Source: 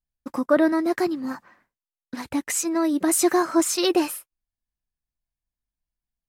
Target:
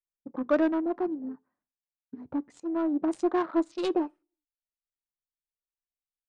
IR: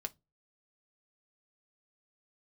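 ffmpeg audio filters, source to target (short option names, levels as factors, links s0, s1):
-filter_complex "[0:a]bandreject=f=60:t=h:w=6,bandreject=f=120:t=h:w=6,bandreject=f=180:t=h:w=6,bandreject=f=240:t=h:w=6,afwtdn=0.0316,adynamicsmooth=sensitivity=1:basefreq=1200,aresample=22050,aresample=44100,asplit=2[s0][s1];[1:a]atrim=start_sample=2205,asetrate=30870,aresample=44100[s2];[s1][s2]afir=irnorm=-1:irlink=0,volume=0.251[s3];[s0][s3]amix=inputs=2:normalize=0,volume=0.422"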